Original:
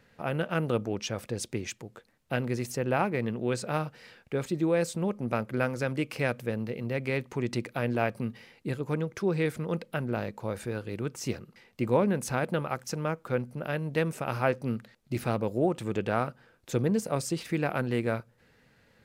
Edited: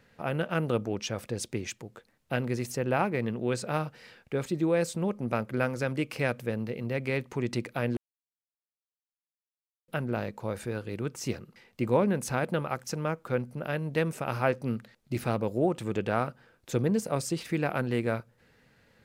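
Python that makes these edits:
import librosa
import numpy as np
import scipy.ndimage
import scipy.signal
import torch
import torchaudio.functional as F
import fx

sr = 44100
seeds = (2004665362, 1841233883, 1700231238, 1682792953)

y = fx.edit(x, sr, fx.silence(start_s=7.97, length_s=1.91), tone=tone)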